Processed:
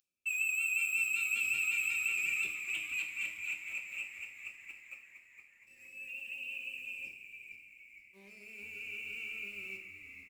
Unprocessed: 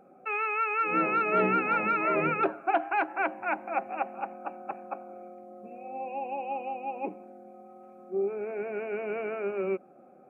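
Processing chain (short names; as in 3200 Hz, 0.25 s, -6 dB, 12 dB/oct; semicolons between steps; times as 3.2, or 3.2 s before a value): octaver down 1 oct, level +1 dB; elliptic high-pass 2700 Hz, stop band 40 dB; sample leveller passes 3; frequency-shifting echo 0.464 s, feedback 51%, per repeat -110 Hz, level -9 dB; two-slope reverb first 0.59 s, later 4.9 s, from -18 dB, DRR 2 dB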